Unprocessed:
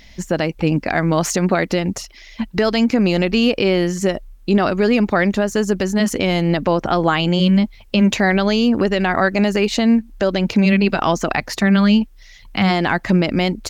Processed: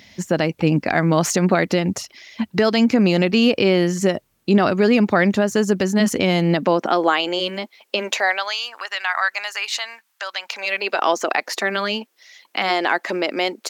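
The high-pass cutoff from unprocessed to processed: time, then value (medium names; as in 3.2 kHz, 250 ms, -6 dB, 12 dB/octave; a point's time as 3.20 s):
high-pass 24 dB/octave
6.19 s 95 Hz
7.19 s 350 Hz
7.97 s 350 Hz
8.56 s 970 Hz
10.35 s 970 Hz
11.07 s 350 Hz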